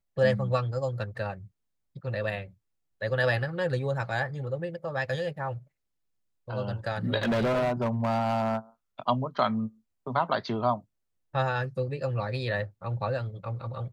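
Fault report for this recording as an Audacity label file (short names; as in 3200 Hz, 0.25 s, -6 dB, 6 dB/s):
7.220000	8.580000	clipped -23 dBFS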